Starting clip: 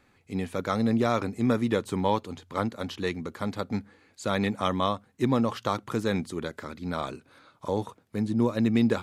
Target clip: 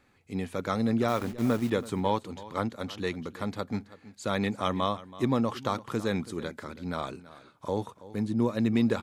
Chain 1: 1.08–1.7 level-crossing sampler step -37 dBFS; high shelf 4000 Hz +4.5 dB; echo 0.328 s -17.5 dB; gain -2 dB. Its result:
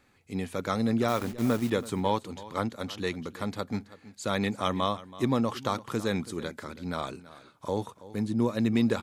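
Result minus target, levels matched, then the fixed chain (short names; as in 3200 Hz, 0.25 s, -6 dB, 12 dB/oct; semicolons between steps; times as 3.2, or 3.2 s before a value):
8000 Hz band +3.5 dB
1.08–1.7 level-crossing sampler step -37 dBFS; echo 0.328 s -17.5 dB; gain -2 dB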